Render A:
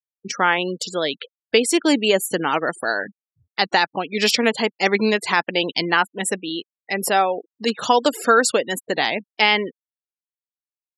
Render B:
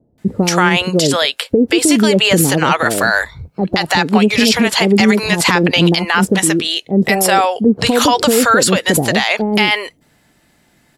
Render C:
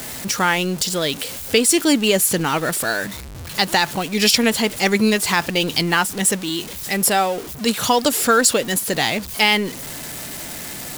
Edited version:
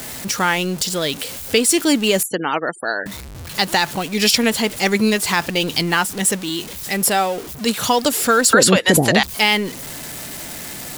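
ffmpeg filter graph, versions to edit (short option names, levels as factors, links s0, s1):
-filter_complex "[2:a]asplit=3[s0][s1][s2];[s0]atrim=end=2.232[s3];[0:a]atrim=start=2.228:end=3.062[s4];[s1]atrim=start=3.058:end=8.532[s5];[1:a]atrim=start=8.528:end=9.232[s6];[s2]atrim=start=9.228[s7];[s3][s4]acrossfade=d=0.004:c1=hsin:c2=hsin[s8];[s8][s5]acrossfade=d=0.004:c1=hsin:c2=hsin[s9];[s9][s6]acrossfade=d=0.004:c1=hsin:c2=hsin[s10];[s10][s7]acrossfade=d=0.004:c1=hsin:c2=hsin"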